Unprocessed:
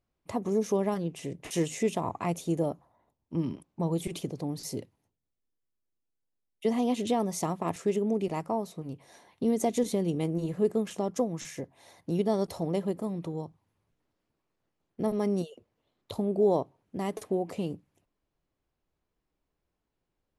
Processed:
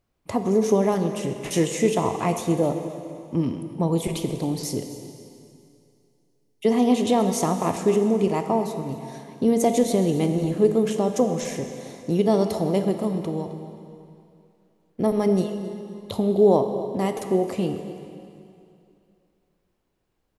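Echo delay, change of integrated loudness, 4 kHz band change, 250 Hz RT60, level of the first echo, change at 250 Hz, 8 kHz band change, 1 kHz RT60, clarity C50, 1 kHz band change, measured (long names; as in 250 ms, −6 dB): 264 ms, +7.5 dB, +8.0 dB, 2.5 s, −16.5 dB, +8.0 dB, +8.0 dB, 2.6 s, 7.5 dB, +8.0 dB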